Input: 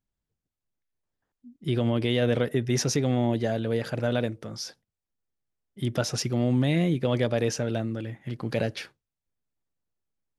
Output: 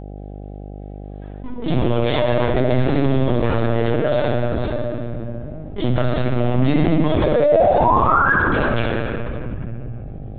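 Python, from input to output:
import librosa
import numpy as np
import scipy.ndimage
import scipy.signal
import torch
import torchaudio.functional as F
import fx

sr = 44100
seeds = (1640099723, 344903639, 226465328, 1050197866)

p1 = fx.lower_of_two(x, sr, delay_ms=6.7)
p2 = fx.recorder_agc(p1, sr, target_db=-21.5, rise_db_per_s=5.2, max_gain_db=30)
p3 = fx.quant_float(p2, sr, bits=2)
p4 = p2 + F.gain(torch.from_numpy(p3), -8.0).numpy()
p5 = fx.spec_paint(p4, sr, seeds[0], shape='rise', start_s=7.24, length_s=1.09, low_hz=450.0, high_hz=1700.0, level_db=-20.0)
p6 = p5 + fx.echo_filtered(p5, sr, ms=62, feedback_pct=69, hz=1500.0, wet_db=-4.5, dry=0)
p7 = fx.room_shoebox(p6, sr, seeds[1], volume_m3=3600.0, walls='mixed', distance_m=3.0)
p8 = fx.lpc_vocoder(p7, sr, seeds[2], excitation='pitch_kept', order=16)
p9 = fx.dmg_buzz(p8, sr, base_hz=50.0, harmonics=16, level_db=-52.0, tilt_db=-5, odd_only=False)
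p10 = fx.env_flatten(p9, sr, amount_pct=50)
y = F.gain(torch.from_numpy(p10), -3.0).numpy()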